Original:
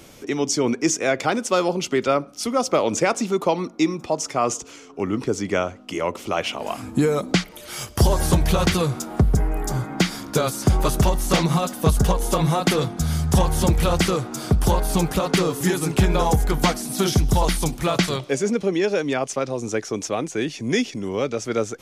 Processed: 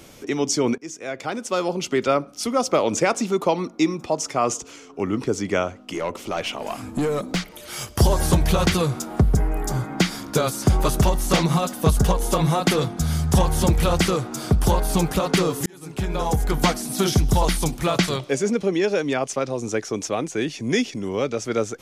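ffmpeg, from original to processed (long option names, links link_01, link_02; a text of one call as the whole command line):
ffmpeg -i in.wav -filter_complex "[0:a]asettb=1/sr,asplit=3[link_01][link_02][link_03];[link_01]atrim=end=5.814[link_04];[link_02]atrim=start=5.81:end=7.73,asetpts=PTS-STARTPTS,afade=type=in:duration=0.004:curve=qsin,afade=type=out:start_time=1.916:duration=0.004:curve=qsin,aeval=exprs='(tanh(7.94*val(0)+0.15)-tanh(0.15))/7.94':channel_layout=same[link_05];[link_03]atrim=start=7.726[link_06];[link_04][link_05]acrossfade=duration=0.004:curve1=hsin:curve2=qsin[link_07];[link_07][link_06]acrossfade=duration=0.004:curve1=qsin:curve2=hsin,asplit=3[link_08][link_09][link_10];[link_08]atrim=end=0.78,asetpts=PTS-STARTPTS,afade=type=out:start_time=0.776:duration=0.004:curve=hsin:silence=0.105925[link_11];[link_09]atrim=start=0.78:end=15.66,asetpts=PTS-STARTPTS,afade=type=in:duration=1.25:silence=0.105925,afade=type=out:start_time=14.876:duration=0.004:curve=hsin[link_12];[link_10]atrim=start=15.66,asetpts=PTS-STARTPTS,afade=type=in:duration=0.94[link_13];[link_11][link_12][link_13]concat=n=3:v=0:a=1" out.wav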